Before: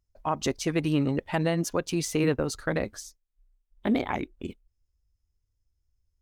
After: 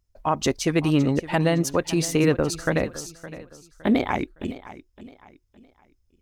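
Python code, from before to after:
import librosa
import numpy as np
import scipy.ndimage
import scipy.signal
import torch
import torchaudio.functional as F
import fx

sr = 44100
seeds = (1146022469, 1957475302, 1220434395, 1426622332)

y = fx.echo_feedback(x, sr, ms=563, feedback_pct=34, wet_db=-16)
y = y * 10.0 ** (5.0 / 20.0)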